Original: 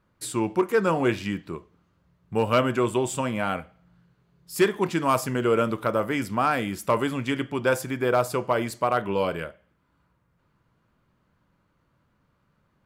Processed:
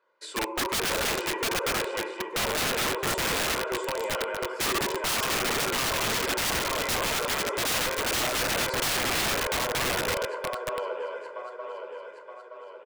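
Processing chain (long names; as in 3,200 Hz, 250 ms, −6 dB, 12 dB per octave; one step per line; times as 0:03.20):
gate pattern "xxxx.xxx." 134 BPM −12 dB
high-pass filter 400 Hz 24 dB per octave
high-frequency loss of the air 120 metres
comb filter 2 ms, depth 64%
feedback echo with a long and a short gap by turns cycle 921 ms, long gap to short 3 to 1, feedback 49%, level −5 dB
on a send at −5.5 dB: convolution reverb RT60 1.3 s, pre-delay 7 ms
on the sum: wrap-around overflow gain 22 dB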